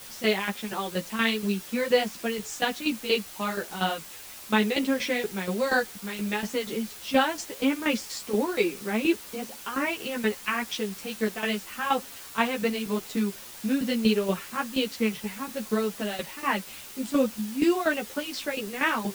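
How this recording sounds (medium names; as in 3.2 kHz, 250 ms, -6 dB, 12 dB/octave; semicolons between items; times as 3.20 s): tremolo saw down 4.2 Hz, depth 80%; a quantiser's noise floor 8-bit, dither triangular; a shimmering, thickened sound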